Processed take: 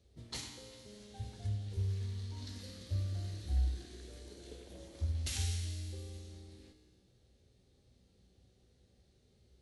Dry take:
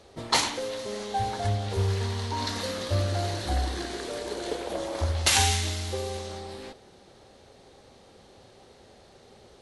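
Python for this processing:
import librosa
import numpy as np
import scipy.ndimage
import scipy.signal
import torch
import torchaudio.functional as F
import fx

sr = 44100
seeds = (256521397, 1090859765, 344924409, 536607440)

y = scipy.signal.sosfilt(scipy.signal.butter(2, 44.0, 'highpass', fs=sr, output='sos'), x)
y = fx.tone_stack(y, sr, knobs='10-0-1')
y = fx.comb_fb(y, sr, f0_hz=62.0, decay_s=1.7, harmonics='all', damping=0.0, mix_pct=80)
y = F.gain(torch.from_numpy(y), 15.0).numpy()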